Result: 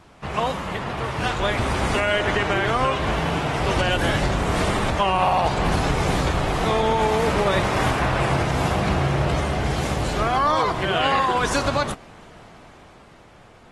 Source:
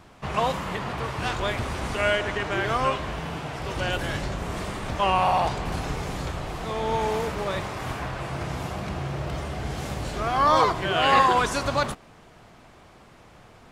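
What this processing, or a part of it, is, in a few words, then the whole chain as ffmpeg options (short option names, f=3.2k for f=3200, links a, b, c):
low-bitrate web radio: -af "dynaudnorm=f=330:g=9:m=11.5dB,alimiter=limit=-11.5dB:level=0:latency=1:release=191" -ar 48000 -c:a aac -b:a 32k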